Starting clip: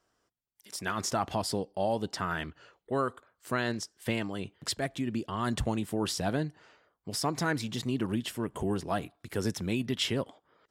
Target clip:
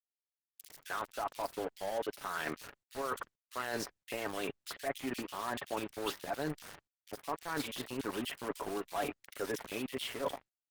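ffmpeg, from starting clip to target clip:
-filter_complex "[0:a]highpass=480,acrossover=split=3200[a][b];[b]acompressor=threshold=-50dB:ratio=4:attack=1:release=60[c];[a][c]amix=inputs=2:normalize=0,aecho=1:1:7.1:0.47,alimiter=limit=-22dB:level=0:latency=1:release=285,areverse,acompressor=threshold=-48dB:ratio=12,areverse,aeval=exprs='val(0)*gte(abs(val(0)),0.00237)':c=same,acrossover=split=2400[d][e];[d]adelay=40[f];[f][e]amix=inputs=2:normalize=0,volume=15.5dB" -ar 48000 -c:a libopus -b:a 20k

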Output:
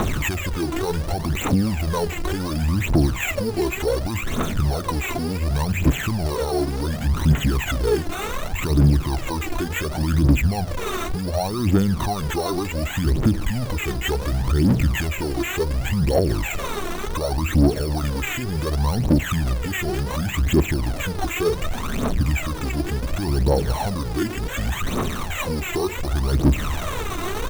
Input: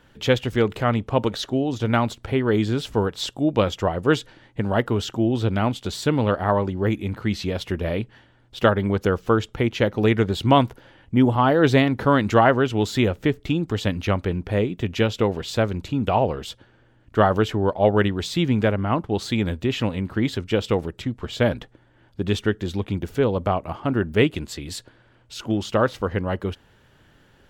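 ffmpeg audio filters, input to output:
-filter_complex "[0:a]aeval=exprs='val(0)+0.5*0.0794*sgn(val(0))':c=same,highshelf=f=5.5k:g=-10.5,bandreject=f=60:t=h:w=6,bandreject=f=120:t=h:w=6,bandreject=f=180:t=h:w=6,asplit=2[a][b];[b]acompressor=threshold=-25dB:ratio=6,volume=1dB[c];[a][c]amix=inputs=2:normalize=0,alimiter=limit=-11.5dB:level=0:latency=1:release=23,adynamicsmooth=sensitivity=3:basefreq=4.3k,asetrate=32097,aresample=44100,atempo=1.37395,acrusher=samples=9:mix=1:aa=0.000001,asplit=2[d][e];[e]aecho=0:1:342:0.0841[f];[d][f]amix=inputs=2:normalize=0,aphaser=in_gain=1:out_gain=1:delay=3:decay=0.69:speed=0.68:type=triangular,volume=-5.5dB"

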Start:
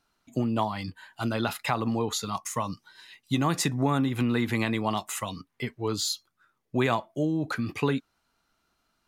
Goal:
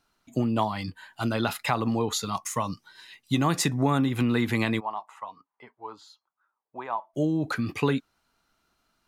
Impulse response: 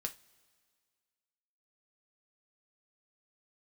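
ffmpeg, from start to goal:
-filter_complex "[0:a]asplit=3[a][b][c];[a]afade=t=out:st=4.79:d=0.02[d];[b]bandpass=f=920:t=q:w=3.5:csg=0,afade=t=in:st=4.79:d=0.02,afade=t=out:st=7.13:d=0.02[e];[c]afade=t=in:st=7.13:d=0.02[f];[d][e][f]amix=inputs=3:normalize=0,volume=1.5dB"

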